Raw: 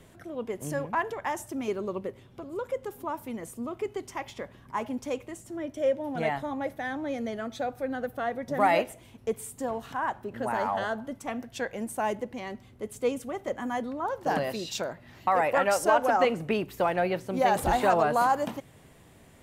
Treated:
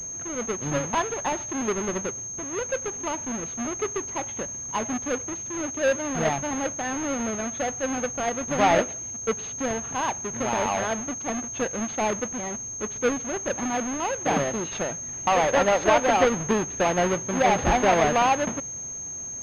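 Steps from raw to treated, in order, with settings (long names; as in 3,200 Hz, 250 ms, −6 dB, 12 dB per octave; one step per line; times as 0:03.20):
each half-wave held at its own peak
switching amplifier with a slow clock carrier 6,400 Hz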